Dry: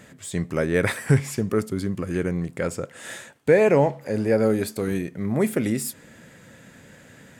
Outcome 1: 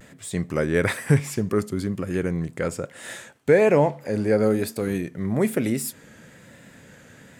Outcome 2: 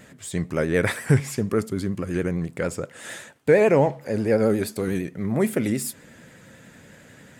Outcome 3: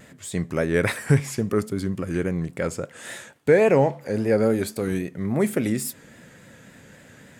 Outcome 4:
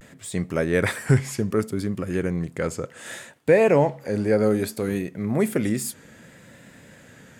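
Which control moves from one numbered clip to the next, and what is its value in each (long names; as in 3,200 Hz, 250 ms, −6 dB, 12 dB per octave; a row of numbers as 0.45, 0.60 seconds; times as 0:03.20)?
pitch vibrato, speed: 1.1, 11, 3.6, 0.64 Hertz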